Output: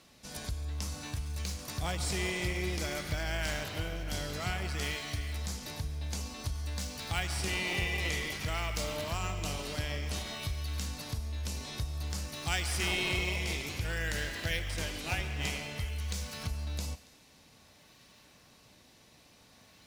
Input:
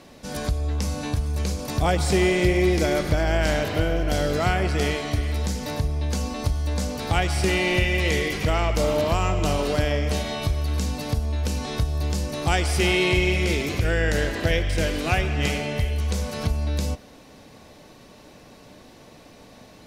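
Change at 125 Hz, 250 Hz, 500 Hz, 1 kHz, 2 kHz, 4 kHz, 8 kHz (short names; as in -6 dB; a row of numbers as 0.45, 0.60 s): -12.0, -15.5, -17.0, -13.0, -9.0, -7.0, -5.5 dB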